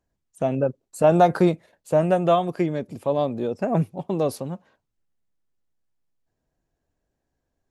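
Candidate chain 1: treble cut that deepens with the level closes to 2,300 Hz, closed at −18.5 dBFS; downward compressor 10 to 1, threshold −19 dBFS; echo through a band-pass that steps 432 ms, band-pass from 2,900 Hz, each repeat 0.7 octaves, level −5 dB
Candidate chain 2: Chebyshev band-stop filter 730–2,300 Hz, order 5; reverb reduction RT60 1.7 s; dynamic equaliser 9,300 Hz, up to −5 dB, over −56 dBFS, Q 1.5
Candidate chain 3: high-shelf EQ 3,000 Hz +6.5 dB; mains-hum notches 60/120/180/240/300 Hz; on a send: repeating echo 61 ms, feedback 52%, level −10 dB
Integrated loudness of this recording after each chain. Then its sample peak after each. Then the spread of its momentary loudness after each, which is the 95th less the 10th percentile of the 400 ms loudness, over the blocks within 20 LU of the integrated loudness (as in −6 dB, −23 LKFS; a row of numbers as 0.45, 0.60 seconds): −27.0, −24.5, −22.5 LKFS; −9.5, −7.0, −5.0 dBFS; 6, 11, 11 LU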